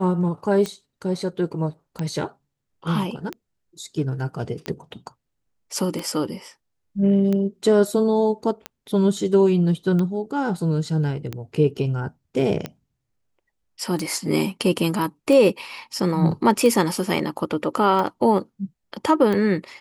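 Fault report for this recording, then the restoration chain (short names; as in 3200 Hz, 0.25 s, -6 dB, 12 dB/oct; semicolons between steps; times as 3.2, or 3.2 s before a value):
tick 45 rpm -14 dBFS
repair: de-click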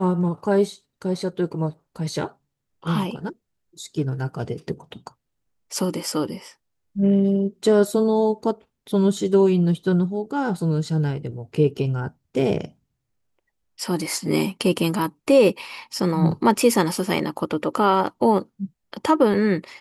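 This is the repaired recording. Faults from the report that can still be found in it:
none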